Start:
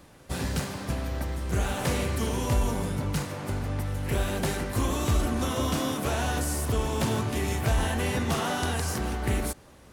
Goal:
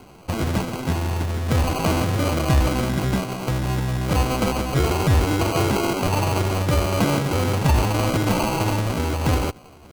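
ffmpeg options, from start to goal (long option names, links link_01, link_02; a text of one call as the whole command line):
ffmpeg -i in.wav -af "acrusher=samples=32:mix=1:aa=0.000001,asetrate=57191,aresample=44100,atempo=0.771105,volume=7dB" out.wav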